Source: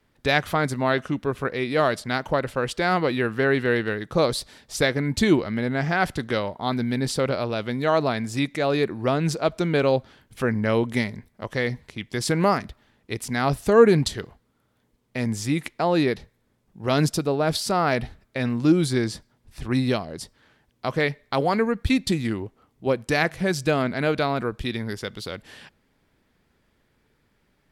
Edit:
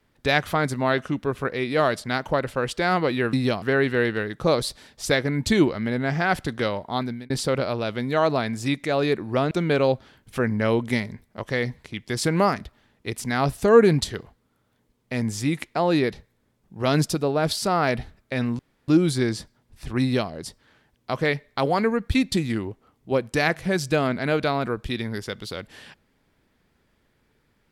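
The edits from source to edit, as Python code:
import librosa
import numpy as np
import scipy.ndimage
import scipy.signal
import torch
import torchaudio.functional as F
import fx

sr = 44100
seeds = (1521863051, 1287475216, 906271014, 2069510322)

y = fx.edit(x, sr, fx.fade_out_span(start_s=6.66, length_s=0.35),
    fx.cut(start_s=9.22, length_s=0.33),
    fx.insert_room_tone(at_s=18.63, length_s=0.29),
    fx.duplicate(start_s=19.76, length_s=0.29, to_s=3.33), tone=tone)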